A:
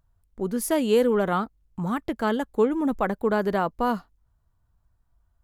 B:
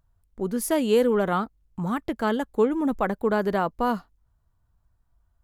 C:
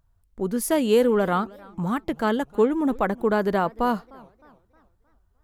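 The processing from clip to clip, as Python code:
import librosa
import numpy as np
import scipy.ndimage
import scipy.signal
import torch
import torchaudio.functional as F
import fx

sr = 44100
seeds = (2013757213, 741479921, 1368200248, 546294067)

y1 = x
y2 = fx.echo_warbled(y1, sr, ms=305, feedback_pct=43, rate_hz=2.8, cents=211, wet_db=-24)
y2 = F.gain(torch.from_numpy(y2), 1.5).numpy()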